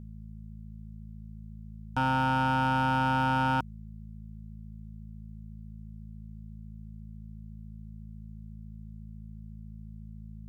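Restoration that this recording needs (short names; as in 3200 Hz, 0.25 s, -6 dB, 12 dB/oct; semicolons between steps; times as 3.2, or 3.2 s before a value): clip repair -21 dBFS; de-hum 54 Hz, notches 4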